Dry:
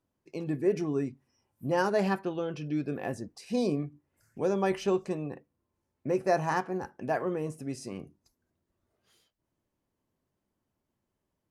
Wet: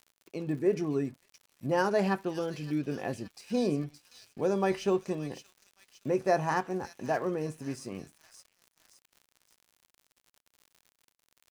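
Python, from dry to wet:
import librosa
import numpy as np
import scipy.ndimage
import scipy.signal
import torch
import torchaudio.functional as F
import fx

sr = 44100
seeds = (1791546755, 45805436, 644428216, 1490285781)

y = fx.echo_wet_highpass(x, sr, ms=569, feedback_pct=58, hz=3400.0, wet_db=-5.0)
y = fx.dmg_crackle(y, sr, seeds[0], per_s=78.0, level_db=-44.0)
y = np.sign(y) * np.maximum(np.abs(y) - 10.0 ** (-59.0 / 20.0), 0.0)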